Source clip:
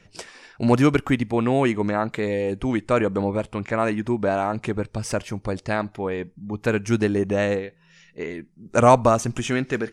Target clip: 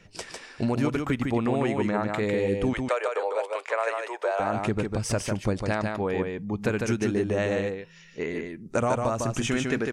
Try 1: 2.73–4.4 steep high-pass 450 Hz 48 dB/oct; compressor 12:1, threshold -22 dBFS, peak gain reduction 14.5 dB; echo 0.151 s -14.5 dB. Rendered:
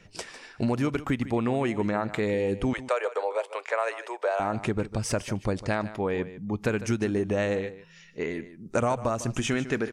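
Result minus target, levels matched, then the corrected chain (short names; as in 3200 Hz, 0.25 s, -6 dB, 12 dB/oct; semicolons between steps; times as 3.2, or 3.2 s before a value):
echo-to-direct -10.5 dB
2.73–4.4 steep high-pass 450 Hz 48 dB/oct; compressor 12:1, threshold -22 dBFS, peak gain reduction 14.5 dB; echo 0.151 s -4 dB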